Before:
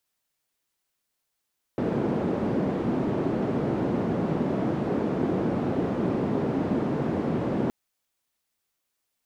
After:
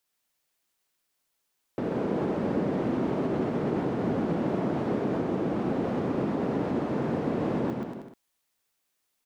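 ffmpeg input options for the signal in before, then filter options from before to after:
-f lavfi -i "anoisesrc=c=white:d=5.92:r=44100:seed=1,highpass=f=180,lowpass=f=290,volume=0.6dB"
-filter_complex "[0:a]equalizer=f=73:t=o:w=2.1:g=-4,alimiter=limit=0.0841:level=0:latency=1:release=160,asplit=2[s0][s1];[s1]aecho=0:1:130|234|317.2|383.8|437:0.631|0.398|0.251|0.158|0.1[s2];[s0][s2]amix=inputs=2:normalize=0"

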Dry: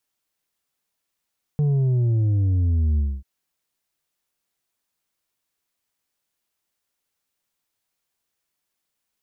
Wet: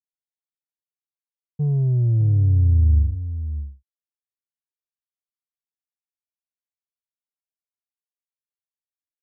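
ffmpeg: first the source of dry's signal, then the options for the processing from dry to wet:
-f lavfi -i "aevalsrc='0.133*clip((1.64-t)/0.25,0,1)*tanh(1.78*sin(2*PI*150*1.64/log(65/150)*(exp(log(65/150)*t/1.64)-1)))/tanh(1.78)':d=1.64:s=44100"
-filter_complex "[0:a]agate=range=0.0224:threshold=0.126:ratio=3:detection=peak,asubboost=boost=3:cutoff=150,asplit=2[s0][s1];[s1]aecho=0:1:601:0.266[s2];[s0][s2]amix=inputs=2:normalize=0"

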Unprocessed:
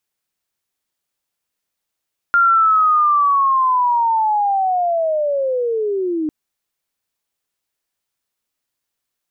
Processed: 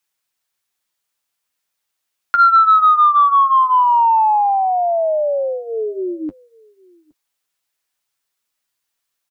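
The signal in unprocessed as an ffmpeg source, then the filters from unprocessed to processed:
-f lavfi -i "aevalsrc='pow(10,(-9.5-8*t/3.95)/20)*sin(2*PI*(1400*t-1100*t*t/(2*3.95)))':d=3.95:s=44100"
-filter_complex "[0:a]asplit=2[s0][s1];[s1]adelay=816.3,volume=0.0447,highshelf=f=4000:g=-18.4[s2];[s0][s2]amix=inputs=2:normalize=0,flanger=delay=5.8:depth=6:regen=-28:speed=0.26:shape=triangular,acrossover=split=130|730[s3][s4][s5];[s5]acontrast=85[s6];[s3][s4][s6]amix=inputs=3:normalize=0"

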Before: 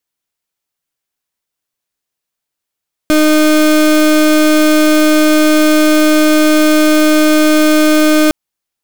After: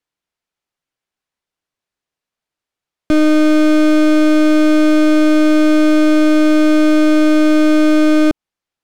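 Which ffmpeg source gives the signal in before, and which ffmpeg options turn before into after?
-f lavfi -i "aevalsrc='0.376*(2*lt(mod(307*t,1),0.32)-1)':d=5.21:s=44100"
-filter_complex "[0:a]aemphasis=mode=reproduction:type=50fm,acrossover=split=420[s0][s1];[s1]alimiter=limit=0.211:level=0:latency=1:release=128[s2];[s0][s2]amix=inputs=2:normalize=0"

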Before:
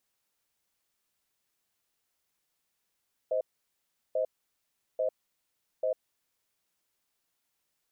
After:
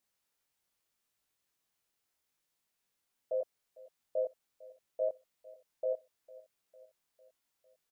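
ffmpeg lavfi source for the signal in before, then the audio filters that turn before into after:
-f lavfi -i "aevalsrc='0.0376*(sin(2*PI*519*t)+sin(2*PI*629*t))*clip(min(mod(t,0.84),0.1-mod(t,0.84))/0.005,0,1)':d=2.95:s=44100"
-af "flanger=delay=20:depth=3.3:speed=0.76,aecho=1:1:452|904|1356|1808:0.0944|0.0538|0.0307|0.0175"

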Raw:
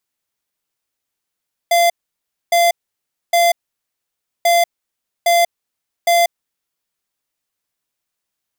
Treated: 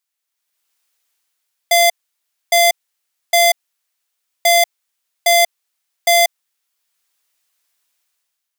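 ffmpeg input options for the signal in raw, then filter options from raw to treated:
-f lavfi -i "aevalsrc='0.237*(2*lt(mod(688*t,1),0.5)-1)*clip(min(mod(mod(t,2.74),0.81),0.19-mod(mod(t,2.74),0.81))/0.005,0,1)*lt(mod(t,2.74),2.43)':d=5.48:s=44100"
-af "highpass=f=1300:p=1,dynaudnorm=f=120:g=9:m=3.55"

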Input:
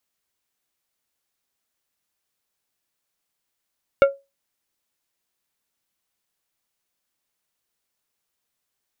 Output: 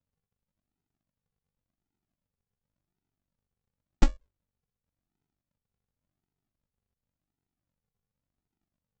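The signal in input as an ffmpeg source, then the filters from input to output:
-f lavfi -i "aevalsrc='0.473*pow(10,-3*t/0.23)*sin(2*PI*553*t)+0.211*pow(10,-3*t/0.121)*sin(2*PI*1382.5*t)+0.0944*pow(10,-3*t/0.087)*sin(2*PI*2212*t)+0.0422*pow(10,-3*t/0.075)*sin(2*PI*2765*t)+0.0188*pow(10,-3*t/0.062)*sin(2*PI*3594.5*t)':d=0.89:s=44100"
-af "aeval=exprs='val(0)*sin(2*PI*24*n/s)':c=same,aresample=16000,acrusher=samples=40:mix=1:aa=0.000001:lfo=1:lforange=24:lforate=0.91,aresample=44100"

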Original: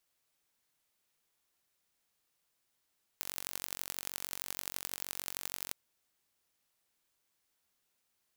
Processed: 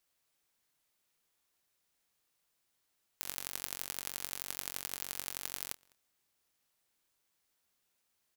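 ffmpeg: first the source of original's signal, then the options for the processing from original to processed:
-f lavfi -i "aevalsrc='0.376*eq(mod(n,952),0)*(0.5+0.5*eq(mod(n,3808),0))':d=2.52:s=44100"
-filter_complex "[0:a]asplit=2[s0][s1];[s1]adelay=29,volume=0.2[s2];[s0][s2]amix=inputs=2:normalize=0,asplit=2[s3][s4];[s4]adelay=204.1,volume=0.0447,highshelf=f=4000:g=-4.59[s5];[s3][s5]amix=inputs=2:normalize=0"

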